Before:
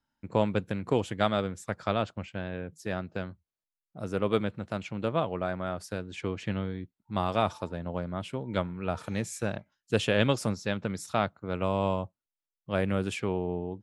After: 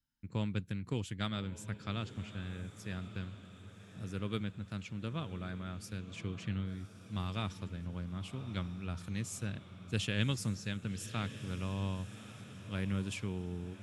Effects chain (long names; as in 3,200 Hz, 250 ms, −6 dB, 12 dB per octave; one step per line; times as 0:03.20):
guitar amp tone stack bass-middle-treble 6-0-2
feedback delay with all-pass diffusion 1,143 ms, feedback 53%, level −12.5 dB
level +11 dB